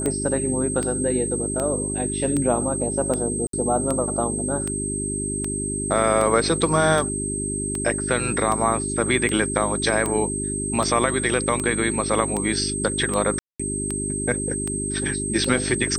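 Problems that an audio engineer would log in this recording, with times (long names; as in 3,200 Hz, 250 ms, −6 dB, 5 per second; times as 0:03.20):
mains hum 50 Hz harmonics 8 −29 dBFS
scratch tick 78 rpm −12 dBFS
whistle 8,300 Hz −27 dBFS
0:03.47–0:03.53: drop-out 63 ms
0:13.39–0:13.60: drop-out 205 ms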